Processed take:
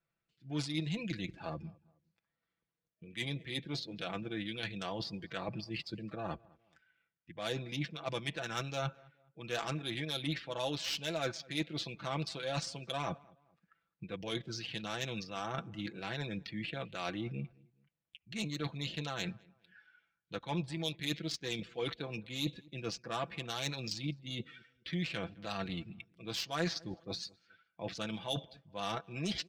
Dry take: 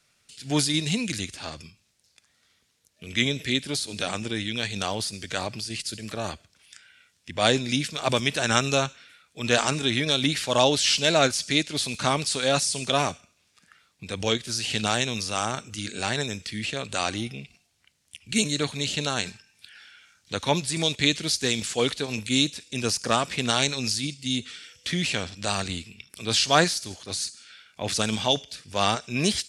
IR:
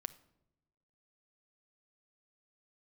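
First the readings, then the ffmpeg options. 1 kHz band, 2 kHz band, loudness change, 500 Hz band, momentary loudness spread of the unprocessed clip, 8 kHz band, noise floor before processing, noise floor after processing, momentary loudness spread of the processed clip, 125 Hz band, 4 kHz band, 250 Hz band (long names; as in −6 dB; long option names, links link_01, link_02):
−13.5 dB, −13.5 dB, −13.5 dB, −13.0 dB, 11 LU, −20.5 dB, −68 dBFS, below −85 dBFS, 7 LU, −9.0 dB, −14.5 dB, −11.0 dB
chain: -filter_complex "[0:a]adynamicsmooth=sensitivity=2:basefreq=1800,afftdn=noise_reduction=16:noise_floor=-44,areverse,acompressor=threshold=-38dB:ratio=4,areverse,aecho=1:1:6:0.67,asplit=2[link_01][link_02];[link_02]adelay=210,lowpass=frequency=1800:poles=1,volume=-24dB,asplit=2[link_03][link_04];[link_04]adelay=210,lowpass=frequency=1800:poles=1,volume=0.36[link_05];[link_01][link_03][link_05]amix=inputs=3:normalize=0"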